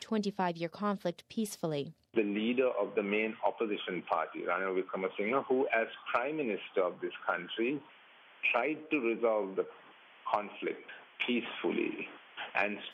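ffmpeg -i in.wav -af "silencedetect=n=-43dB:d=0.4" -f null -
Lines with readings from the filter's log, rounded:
silence_start: 7.79
silence_end: 8.43 | silence_duration: 0.64
silence_start: 9.70
silence_end: 10.26 | silence_duration: 0.56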